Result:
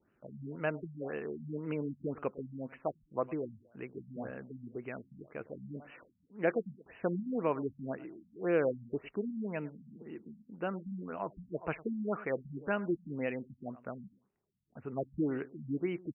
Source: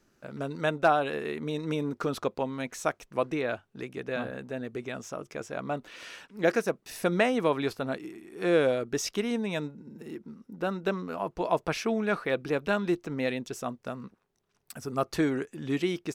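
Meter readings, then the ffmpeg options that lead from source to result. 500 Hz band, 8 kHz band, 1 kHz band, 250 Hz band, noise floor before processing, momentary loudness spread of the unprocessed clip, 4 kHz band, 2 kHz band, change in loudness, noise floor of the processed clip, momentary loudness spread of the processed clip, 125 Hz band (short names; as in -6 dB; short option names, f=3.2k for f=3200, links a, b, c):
-7.5 dB, under -35 dB, -11.0 dB, -6.0 dB, -73 dBFS, 15 LU, under -20 dB, -10.0 dB, -7.5 dB, -74 dBFS, 15 LU, -5.5 dB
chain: -af "highpass=41,aecho=1:1:105|210:0.106|0.0297,afftfilt=real='re*lt(b*sr/1024,230*pow(3100/230,0.5+0.5*sin(2*PI*1.9*pts/sr)))':imag='im*lt(b*sr/1024,230*pow(3100/230,0.5+0.5*sin(2*PI*1.9*pts/sr)))':win_size=1024:overlap=0.75,volume=-5.5dB"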